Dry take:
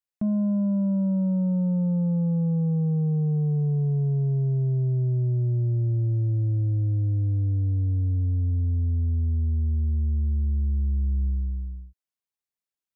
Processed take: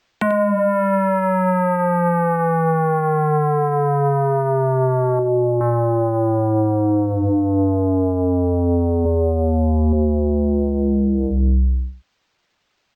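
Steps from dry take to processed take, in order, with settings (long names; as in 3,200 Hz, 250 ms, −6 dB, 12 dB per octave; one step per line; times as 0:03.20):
0:05.19–0:05.61: spectral envelope exaggerated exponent 1.5
reverb reduction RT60 1.3 s
hum removal 102 Hz, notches 2
downward compressor 6 to 1, threshold −32 dBFS, peak gain reduction 7.5 dB
sine wavefolder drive 17 dB, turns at −22 dBFS
0:09.04–0:09.93: double-tracking delay 14 ms −3 dB
single-tap delay 92 ms −13 dB
linearly interpolated sample-rate reduction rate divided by 4×
level +8 dB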